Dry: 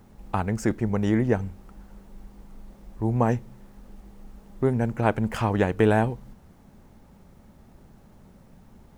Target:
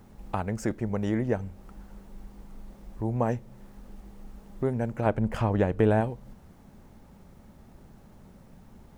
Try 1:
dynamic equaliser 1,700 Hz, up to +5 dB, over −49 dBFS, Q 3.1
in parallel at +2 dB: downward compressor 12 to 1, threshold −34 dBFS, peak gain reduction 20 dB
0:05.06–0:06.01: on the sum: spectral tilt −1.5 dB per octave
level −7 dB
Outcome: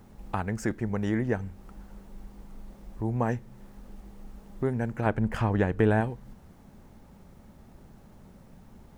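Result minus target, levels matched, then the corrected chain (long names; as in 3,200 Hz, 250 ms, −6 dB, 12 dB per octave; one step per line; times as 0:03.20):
2,000 Hz band +4.0 dB
dynamic equaliser 580 Hz, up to +5 dB, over −49 dBFS, Q 3.1
in parallel at +2 dB: downward compressor 12 to 1, threshold −34 dBFS, peak gain reduction 20.5 dB
0:05.06–0:06.01: on the sum: spectral tilt −1.5 dB per octave
level −7 dB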